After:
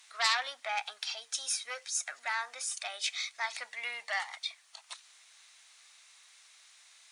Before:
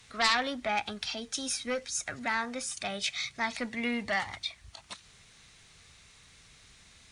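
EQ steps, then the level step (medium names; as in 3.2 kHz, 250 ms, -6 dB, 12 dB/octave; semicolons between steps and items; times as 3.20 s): high-pass 710 Hz 24 dB/octave; treble shelf 5.9 kHz +6 dB; -3.0 dB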